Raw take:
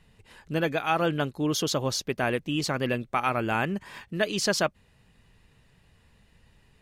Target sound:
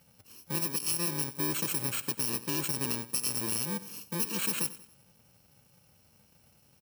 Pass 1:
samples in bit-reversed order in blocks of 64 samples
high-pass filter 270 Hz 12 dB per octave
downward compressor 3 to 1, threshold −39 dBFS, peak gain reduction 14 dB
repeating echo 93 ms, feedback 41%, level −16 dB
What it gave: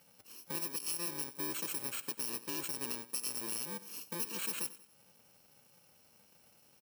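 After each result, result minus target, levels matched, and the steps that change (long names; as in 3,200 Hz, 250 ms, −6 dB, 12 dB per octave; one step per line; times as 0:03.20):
125 Hz band −8.5 dB; downward compressor: peak gain reduction +6.5 dB
change: high-pass filter 120 Hz 12 dB per octave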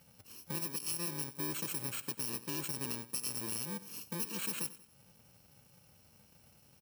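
downward compressor: peak gain reduction +6.5 dB
change: downward compressor 3 to 1, threshold −29 dBFS, peak gain reduction 7.5 dB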